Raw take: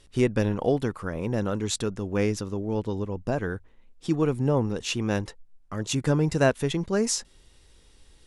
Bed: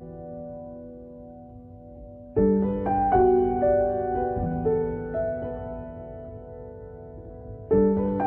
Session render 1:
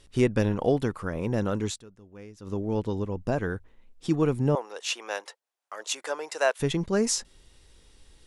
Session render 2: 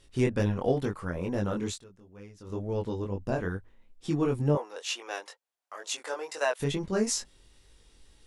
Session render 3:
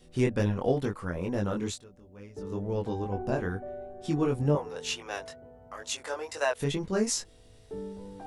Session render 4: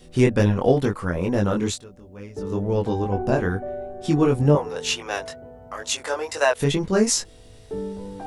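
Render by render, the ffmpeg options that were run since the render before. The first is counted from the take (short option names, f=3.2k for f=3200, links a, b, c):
-filter_complex "[0:a]asettb=1/sr,asplit=3[a][b][c];[a]atrim=end=4.554[d];[b]atrim=start=4.55:end=6.6,asetpts=PTS-STARTPTS,afade=t=in:d=0.004:c=qsin,afade=t=out:st=2.046:d=0.004:c=qsin,highpass=f=550:w=0.5412,highpass=f=550:w=1.3066[e];[c]atrim=start=6.596[f];[d][e]acrossfade=d=0.004:c1=hsin:c2=qsin[g];[g][f]acrossfade=d=0.004:c1=qsin:c2=hsin,asplit=3[h][i][j];[h]atrim=end=1.81,asetpts=PTS-STARTPTS,afade=t=out:st=1.68:d=0.13:c=qua:silence=0.0944061[k];[i]atrim=start=1.81:end=2.37,asetpts=PTS-STARTPTS,volume=-20.5dB[l];[j]atrim=start=2.37,asetpts=PTS-STARTPTS,afade=t=in:d=0.13:c=qua:silence=0.0944061[m];[k][l][m]concat=n=3:v=0:a=1"
-af "flanger=delay=20:depth=3.1:speed=2.2,aeval=exprs='0.237*(cos(1*acos(clip(val(0)/0.237,-1,1)))-cos(1*PI/2))+0.00133*(cos(5*acos(clip(val(0)/0.237,-1,1)))-cos(5*PI/2))':c=same"
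-filter_complex "[1:a]volume=-19dB[a];[0:a][a]amix=inputs=2:normalize=0"
-af "volume=8.5dB"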